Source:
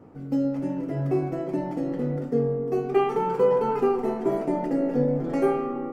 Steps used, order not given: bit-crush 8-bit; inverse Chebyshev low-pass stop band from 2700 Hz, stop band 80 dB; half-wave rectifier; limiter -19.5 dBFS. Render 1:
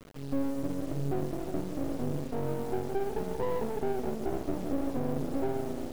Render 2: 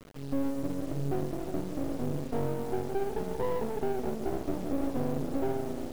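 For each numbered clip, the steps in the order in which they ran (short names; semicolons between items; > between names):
inverse Chebyshev low-pass > bit-crush > limiter > half-wave rectifier; inverse Chebyshev low-pass > half-wave rectifier > limiter > bit-crush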